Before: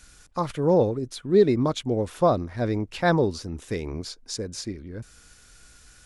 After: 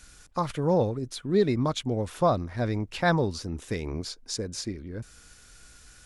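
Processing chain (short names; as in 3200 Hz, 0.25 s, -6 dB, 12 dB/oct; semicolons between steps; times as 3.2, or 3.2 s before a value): dynamic EQ 380 Hz, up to -6 dB, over -31 dBFS, Q 1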